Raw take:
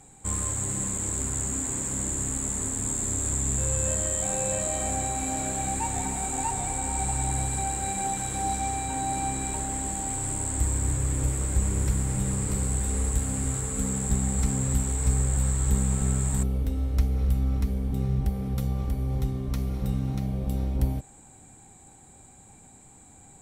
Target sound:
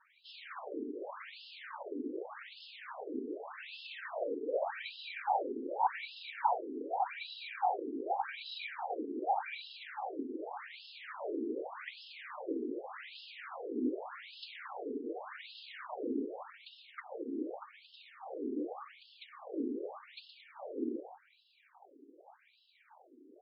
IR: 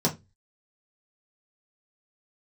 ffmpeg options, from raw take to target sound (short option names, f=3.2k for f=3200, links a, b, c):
-af "aecho=1:1:119.5|221.6:0.355|0.251,afftfilt=real='hypot(re,im)*cos(2*PI*random(0))':imag='hypot(re,im)*sin(2*PI*random(1))':win_size=512:overlap=0.75,afftfilt=real='re*between(b*sr/1024,320*pow(3800/320,0.5+0.5*sin(2*PI*0.85*pts/sr))/1.41,320*pow(3800/320,0.5+0.5*sin(2*PI*0.85*pts/sr))*1.41)':imag='im*between(b*sr/1024,320*pow(3800/320,0.5+0.5*sin(2*PI*0.85*pts/sr))/1.41,320*pow(3800/320,0.5+0.5*sin(2*PI*0.85*pts/sr))*1.41)':win_size=1024:overlap=0.75,volume=8.5dB"